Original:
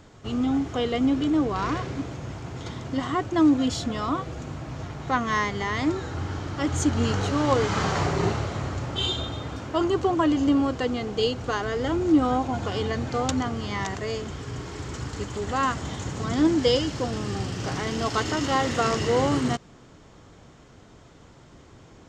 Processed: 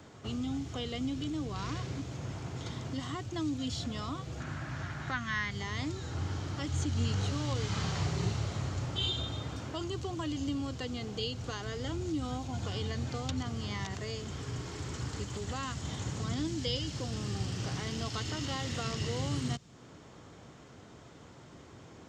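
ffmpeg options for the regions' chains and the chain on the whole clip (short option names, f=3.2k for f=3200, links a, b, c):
-filter_complex "[0:a]asettb=1/sr,asplit=3[a][b][c];[a]atrim=end=4.404[d];[b]atrim=start=4.4:end=5.51,asetpts=PTS-STARTPTS,afade=t=in:d=0.004:c=qsin,afade=t=out:st=1.106:d=0.004:c=qsin,equalizer=f=1.6k:w=1.9:g=13.5,bandreject=f=460:w=5.3,acrossover=split=5400[e][f];[f]acompressor=threshold=-58dB:ratio=4:attack=1:release=60[g];[e][g]amix=inputs=2:normalize=0[h];[c]atrim=start=5.506[i];[d][h]acrossfade=d=0.004:c1=hsin:c2=qsin[j];[j][i]acrossfade=d=0.004:c1=qsin:c2=hsin,acrossover=split=4300[k][l];[l]acompressor=threshold=-44dB:ratio=4:attack=1:release=60[m];[k][m]amix=inputs=2:normalize=0,highpass=77,acrossover=split=160|3000[n][o][p];[o]acompressor=threshold=-42dB:ratio=3[q];[n][q][p]amix=inputs=3:normalize=0,volume=-1.5dB"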